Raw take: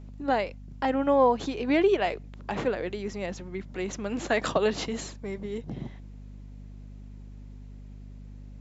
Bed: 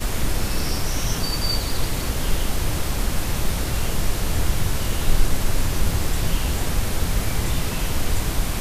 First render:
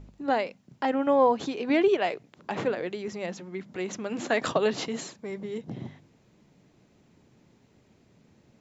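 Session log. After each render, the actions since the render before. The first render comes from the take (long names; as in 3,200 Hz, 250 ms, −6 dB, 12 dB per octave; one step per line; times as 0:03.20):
hum removal 50 Hz, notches 5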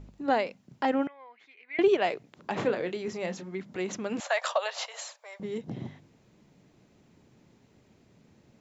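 0:01.07–0:01.79: resonant band-pass 2,100 Hz, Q 12
0:02.54–0:03.55: double-tracking delay 27 ms −10 dB
0:04.20–0:05.40: Chebyshev high-pass filter 560 Hz, order 5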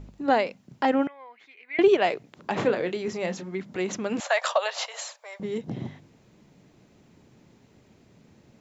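level +4 dB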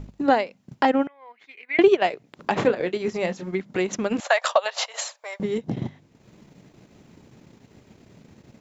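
in parallel at −1 dB: downward compressor, threshold −31 dBFS, peak gain reduction 16 dB
on the sum: transient designer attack +3 dB, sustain −9 dB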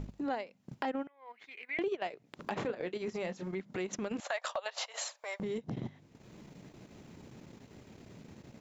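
transient designer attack −8 dB, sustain −3 dB
downward compressor 3 to 1, threshold −37 dBFS, peak gain reduction 16 dB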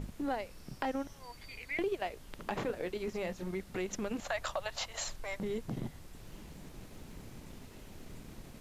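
mix in bed −30 dB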